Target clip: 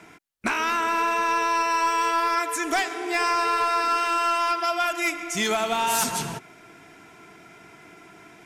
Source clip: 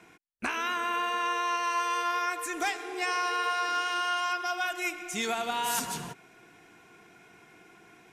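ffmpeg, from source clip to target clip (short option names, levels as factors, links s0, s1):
-filter_complex "[0:a]asplit=2[s0][s1];[s1]aeval=exprs='0.0596*(abs(mod(val(0)/0.0596+3,4)-2)-1)':c=same,volume=0.708[s2];[s0][s2]amix=inputs=2:normalize=0,asetrate=42336,aresample=44100,volume=1.33"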